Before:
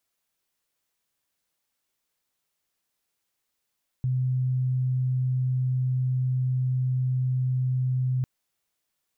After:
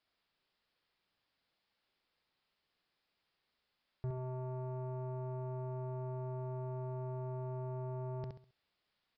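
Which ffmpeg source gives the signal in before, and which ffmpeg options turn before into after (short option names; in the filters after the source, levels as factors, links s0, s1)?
-f lavfi -i "aevalsrc='0.0794*sin(2*PI*128*t)':d=4.2:s=44100"
-af "aresample=11025,asoftclip=type=tanh:threshold=0.0158,aresample=44100,aecho=1:1:67|134|201|268:0.631|0.202|0.0646|0.0207"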